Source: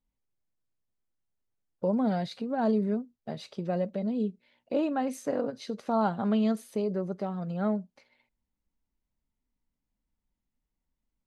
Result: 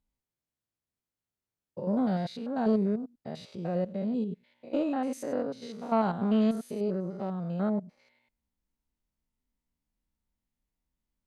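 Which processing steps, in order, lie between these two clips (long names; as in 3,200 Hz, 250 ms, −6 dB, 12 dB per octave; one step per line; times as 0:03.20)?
spectrum averaged block by block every 100 ms
harmonic generator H 3 −23 dB, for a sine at −17 dBFS
level +2.5 dB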